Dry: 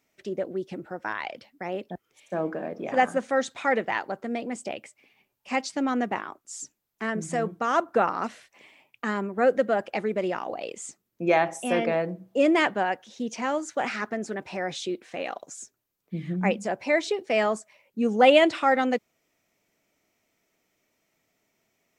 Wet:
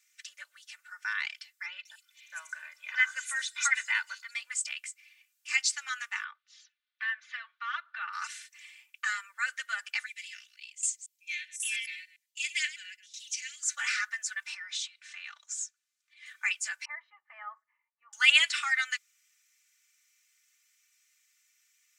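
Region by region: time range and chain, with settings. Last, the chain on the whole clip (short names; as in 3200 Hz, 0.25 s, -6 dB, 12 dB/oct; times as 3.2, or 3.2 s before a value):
1.66–4.34 comb 2 ms, depth 58% + bands offset in time lows, highs 0.19 s, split 4800 Hz
6.24–8.13 elliptic band-pass 610–3700 Hz + compressor 2:1, threshold -29 dBFS
10.06–13.63 reverse delay 0.1 s, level -12 dB + inverse Chebyshev band-stop 190–1000 Hz, stop band 50 dB + tremolo saw down 1.3 Hz, depth 80%
14.54–16.26 compressor 10:1, threshold -33 dBFS + air absorption 64 m
16.85–18.13 LPF 1100 Hz 24 dB/oct + comb 1 ms, depth 55%
whole clip: steep high-pass 1400 Hz 36 dB/oct; bell 7600 Hz +9 dB 1.2 oct; comb 3.4 ms, depth 83%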